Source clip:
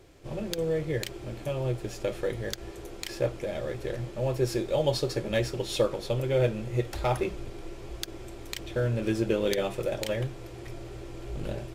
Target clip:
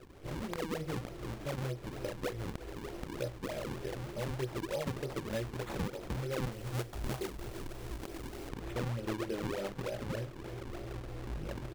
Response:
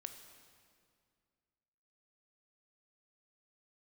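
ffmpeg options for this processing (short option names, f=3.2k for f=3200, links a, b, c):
-af "flanger=delay=16:depth=6.5:speed=0.9,acrusher=samples=39:mix=1:aa=0.000001:lfo=1:lforange=62.4:lforate=3.3,asetnsamples=n=441:p=0,asendcmd='6.52 highshelf g 3.5;8.49 highshelf g -6.5',highshelf=f=5k:g=-3.5,aecho=1:1:348:0.0944,acompressor=threshold=-43dB:ratio=2.5,volume=4dB"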